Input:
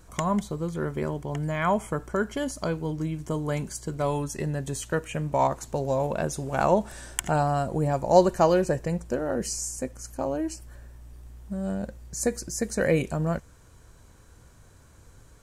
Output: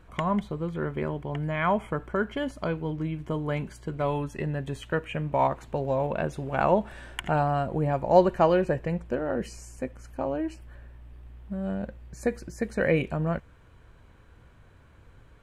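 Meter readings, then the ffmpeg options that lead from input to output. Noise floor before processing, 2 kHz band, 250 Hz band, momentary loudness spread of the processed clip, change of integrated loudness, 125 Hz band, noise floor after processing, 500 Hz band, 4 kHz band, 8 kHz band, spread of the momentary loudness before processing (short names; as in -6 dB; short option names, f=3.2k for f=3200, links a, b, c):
-53 dBFS, +1.0 dB, -1.0 dB, 12 LU, -1.0 dB, -1.0 dB, -55 dBFS, -1.0 dB, -3.0 dB, under -15 dB, 10 LU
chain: -af "highshelf=f=4.2k:t=q:w=1.5:g=-13.5,volume=-1dB"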